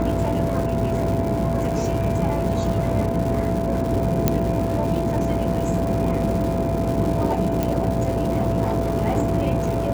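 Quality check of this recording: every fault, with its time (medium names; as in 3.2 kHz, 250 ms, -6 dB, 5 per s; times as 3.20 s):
buzz 60 Hz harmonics 17 -27 dBFS
crackle 390 per s -28 dBFS
whine 670 Hz -26 dBFS
4.28 s: pop -3 dBFS
7.63 s: pop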